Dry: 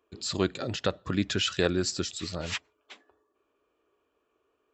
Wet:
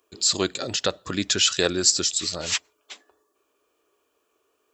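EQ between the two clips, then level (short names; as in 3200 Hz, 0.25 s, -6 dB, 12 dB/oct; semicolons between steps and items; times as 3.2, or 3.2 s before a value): tone controls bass -7 dB, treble +13 dB; +3.5 dB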